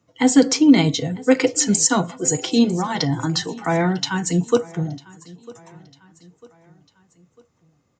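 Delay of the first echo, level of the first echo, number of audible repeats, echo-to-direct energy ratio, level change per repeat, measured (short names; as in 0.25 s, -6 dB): 0.949 s, -22.0 dB, 2, -21.0 dB, -7.0 dB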